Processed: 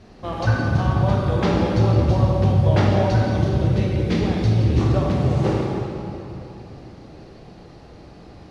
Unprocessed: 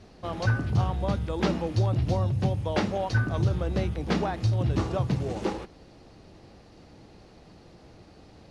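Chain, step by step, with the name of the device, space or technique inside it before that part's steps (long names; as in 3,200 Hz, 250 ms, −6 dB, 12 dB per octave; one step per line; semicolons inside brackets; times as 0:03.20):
0:03.09–0:04.81: flat-topped bell 980 Hz −9 dB
swimming-pool hall (convolution reverb RT60 3.1 s, pre-delay 19 ms, DRR −2.5 dB; high-shelf EQ 4,600 Hz −5 dB)
level +3.5 dB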